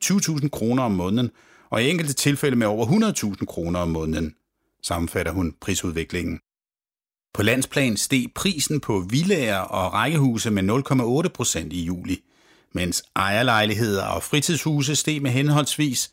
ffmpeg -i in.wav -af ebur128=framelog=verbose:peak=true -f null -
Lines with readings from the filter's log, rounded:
Integrated loudness:
  I:         -22.4 LUFS
  Threshold: -32.6 LUFS
Loudness range:
  LRA:         5.0 LU
  Threshold: -43.1 LUFS
  LRA low:   -26.5 LUFS
  LRA high:  -21.5 LUFS
True peak:
  Peak:       -4.2 dBFS